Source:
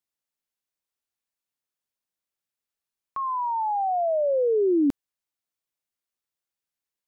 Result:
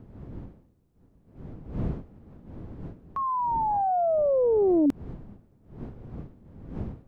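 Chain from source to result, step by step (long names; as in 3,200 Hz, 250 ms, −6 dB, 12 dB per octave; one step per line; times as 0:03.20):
wind on the microphone 200 Hz −40 dBFS
0:03.71–0:04.86: highs frequency-modulated by the lows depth 0.32 ms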